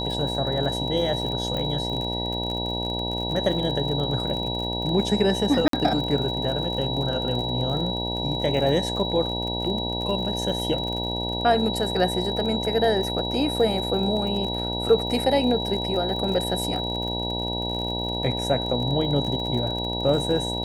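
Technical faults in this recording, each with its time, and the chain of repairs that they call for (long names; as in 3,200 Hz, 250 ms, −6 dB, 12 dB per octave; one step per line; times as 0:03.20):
mains buzz 60 Hz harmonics 16 −30 dBFS
surface crackle 48 per second −30 dBFS
whistle 3,900 Hz −29 dBFS
0:01.57: click −17 dBFS
0:05.68–0:05.73: drop-out 53 ms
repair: click removal
hum removal 60 Hz, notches 16
notch filter 3,900 Hz, Q 30
repair the gap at 0:05.68, 53 ms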